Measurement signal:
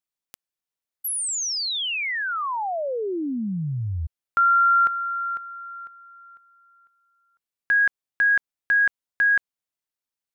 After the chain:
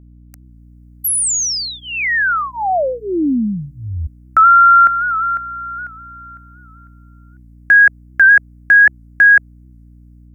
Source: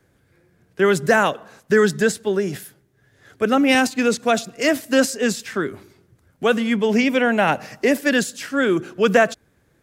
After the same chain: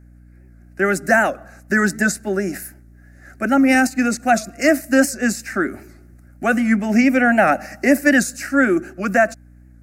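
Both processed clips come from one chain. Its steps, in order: level rider gain up to 12 dB; static phaser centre 670 Hz, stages 8; hum 60 Hz, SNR 27 dB; warped record 78 rpm, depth 100 cents

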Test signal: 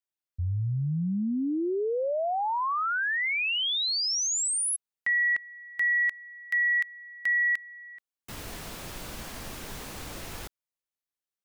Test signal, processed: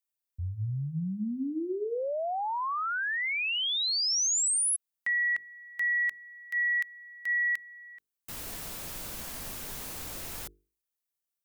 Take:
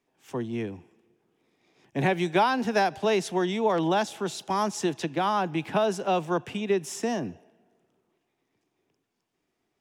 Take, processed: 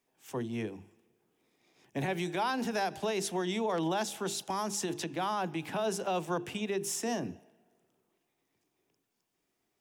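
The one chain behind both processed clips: treble shelf 7.4 kHz +11.5 dB; hum notches 50/100/150/200/250/300/350/400/450 Hz; peak limiter -20.5 dBFS; trim -3.5 dB

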